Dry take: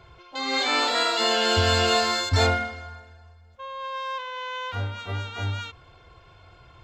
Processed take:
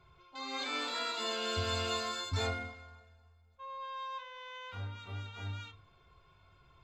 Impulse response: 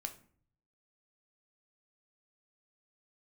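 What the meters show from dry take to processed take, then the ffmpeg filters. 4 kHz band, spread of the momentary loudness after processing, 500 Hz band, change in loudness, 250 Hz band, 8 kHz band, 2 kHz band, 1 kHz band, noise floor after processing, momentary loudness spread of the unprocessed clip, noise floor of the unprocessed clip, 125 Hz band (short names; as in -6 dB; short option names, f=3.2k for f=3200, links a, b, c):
-13.0 dB, 13 LU, -14.0 dB, -13.5 dB, -13.0 dB, -12.5 dB, -14.0 dB, -13.0 dB, -64 dBFS, 17 LU, -53 dBFS, -12.5 dB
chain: -filter_complex "[1:a]atrim=start_sample=2205,asetrate=70560,aresample=44100[a];[0:a][a]afir=irnorm=-1:irlink=0,volume=-6.5dB"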